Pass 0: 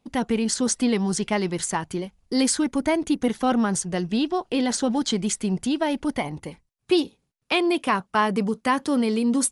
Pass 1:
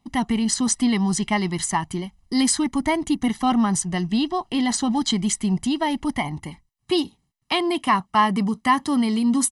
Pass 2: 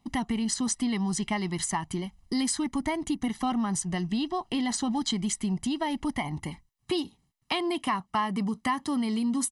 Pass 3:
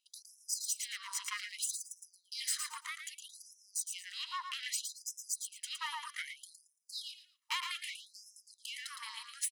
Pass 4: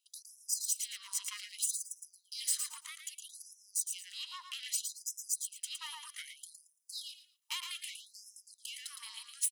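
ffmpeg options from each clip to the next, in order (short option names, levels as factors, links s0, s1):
-af "aecho=1:1:1:0.78"
-af "acompressor=threshold=0.0355:ratio=2.5"
-af "aeval=exprs='(tanh(22.4*val(0)+0.7)-tanh(0.7))/22.4':c=same,aecho=1:1:113|226|339:0.501|0.115|0.0265,afftfilt=real='re*gte(b*sr/1024,880*pow(5200/880,0.5+0.5*sin(2*PI*0.63*pts/sr)))':imag='im*gte(b*sr/1024,880*pow(5200/880,0.5+0.5*sin(2*PI*0.63*pts/sr)))':win_size=1024:overlap=0.75"
-af "aexciter=amount=3.6:drive=2.1:freq=2600,volume=0.355"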